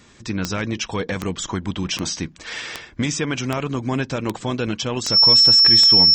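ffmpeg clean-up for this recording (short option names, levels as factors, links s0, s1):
-af "adeclick=t=4,bandreject=f=5400:w=30"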